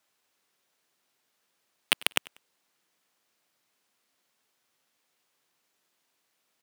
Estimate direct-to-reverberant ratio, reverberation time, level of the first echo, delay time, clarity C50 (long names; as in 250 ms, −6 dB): no reverb audible, no reverb audible, −22.5 dB, 96 ms, no reverb audible